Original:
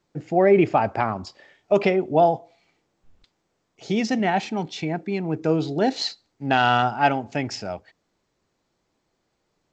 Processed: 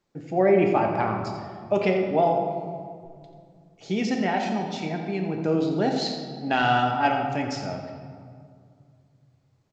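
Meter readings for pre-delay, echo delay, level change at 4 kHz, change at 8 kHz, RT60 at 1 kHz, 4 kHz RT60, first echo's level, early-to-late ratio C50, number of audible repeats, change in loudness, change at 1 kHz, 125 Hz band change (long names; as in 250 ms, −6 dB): 4 ms, 87 ms, −3.0 dB, can't be measured, 2.0 s, 1.2 s, −11.0 dB, 4.0 dB, 1, −2.5 dB, −2.0 dB, −1.5 dB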